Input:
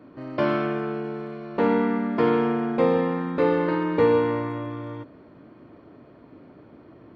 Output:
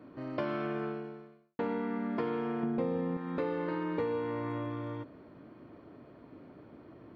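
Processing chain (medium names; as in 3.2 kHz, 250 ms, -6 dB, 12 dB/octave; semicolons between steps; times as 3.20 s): 2.63–3.17 s: bass shelf 420 Hz +11.5 dB; compression 5:1, threshold -27 dBFS, peak gain reduction 15.5 dB; 0.84–1.59 s: fade out quadratic; trim -4 dB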